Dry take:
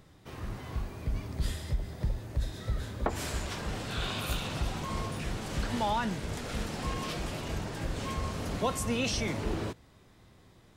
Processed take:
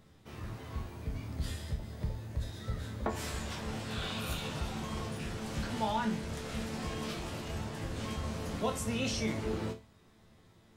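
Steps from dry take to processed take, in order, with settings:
parametric band 190 Hz +2.5 dB 0.77 octaves
resonators tuned to a chord D2 minor, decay 0.29 s
level +7.5 dB

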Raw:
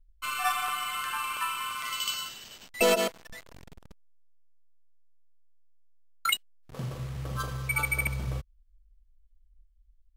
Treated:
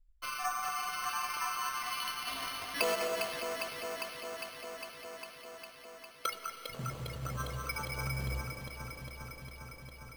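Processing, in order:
treble cut that deepens with the level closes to 1,400 Hz, closed at −25 dBFS
0:02.27–0:06.26: spectral tilt +4.5 dB per octave
delay that swaps between a low-pass and a high-pass 202 ms, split 2,000 Hz, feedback 88%, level −4 dB
convolution reverb, pre-delay 3 ms, DRR 9.5 dB
bad sample-rate conversion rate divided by 6×, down none, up hold
level −5.5 dB

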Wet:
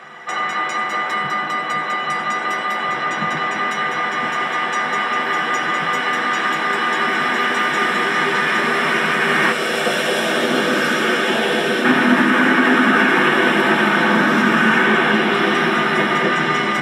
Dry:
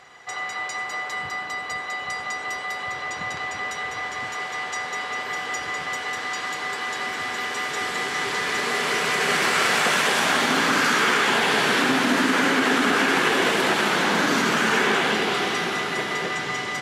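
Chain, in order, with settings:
0:09.52–0:11.85: octave-band graphic EQ 125/250/500/1,000/2,000 Hz −7/−6/+5/−11/−7 dB
speech leveller within 3 dB 0.5 s
convolution reverb, pre-delay 3 ms, DRR 2 dB
level −1.5 dB

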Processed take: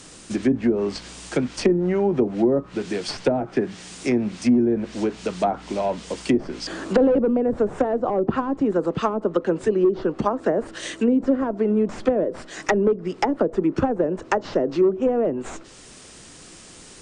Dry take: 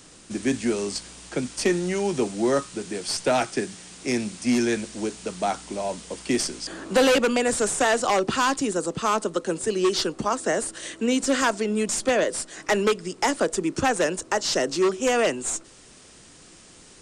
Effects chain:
treble cut that deepens with the level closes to 460 Hz, closed at −18.5 dBFS
level +5 dB

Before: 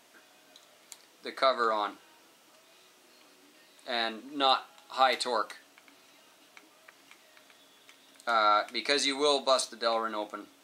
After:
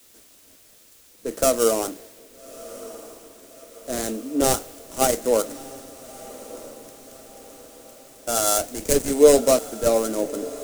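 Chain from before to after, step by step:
gap after every zero crossing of 0.17 ms
bass and treble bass +14 dB, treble +7 dB
feedback delay with all-pass diffusion 1,234 ms, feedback 58%, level −15 dB
in parallel at −2 dB: downward compressor, threshold −40 dBFS, peak gain reduction 20 dB
on the sum: octave-band graphic EQ 125/250/500/1,000/2,000/4,000/8,000 Hz −7/+4/+12/−8/−4/−9/+9 dB
bit-depth reduction 8 bits, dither triangular
bucket-brigade delay 188 ms, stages 1,024, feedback 76%, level −24 dB
multiband upward and downward expander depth 40%
level +1.5 dB

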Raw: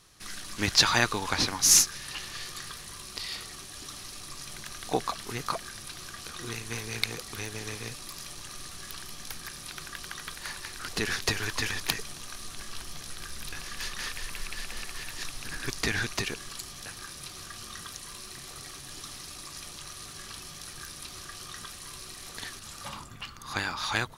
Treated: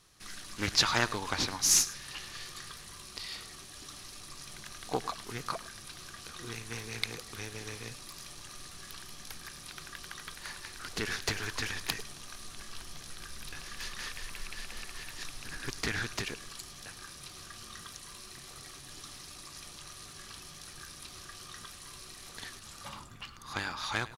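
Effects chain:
single-tap delay 105 ms −18 dB
highs frequency-modulated by the lows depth 0.29 ms
level −4.5 dB

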